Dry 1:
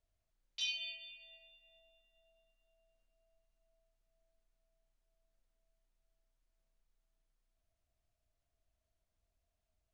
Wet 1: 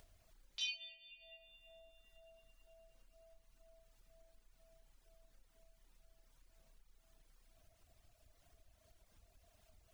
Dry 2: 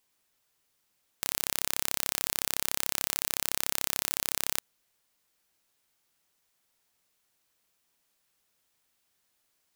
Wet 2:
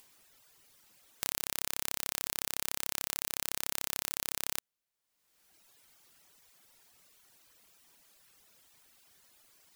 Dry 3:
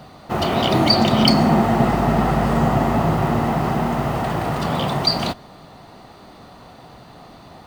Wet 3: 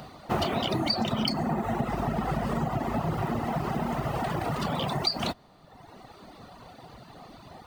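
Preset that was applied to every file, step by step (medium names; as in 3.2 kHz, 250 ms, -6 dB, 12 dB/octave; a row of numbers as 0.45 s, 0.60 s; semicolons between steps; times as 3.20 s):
compression 6:1, threshold -20 dBFS; reverb removal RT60 1.4 s; upward compressor, threshold -47 dBFS; trim -2 dB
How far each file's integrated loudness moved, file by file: -4.5 LU, -5.0 LU, -10.5 LU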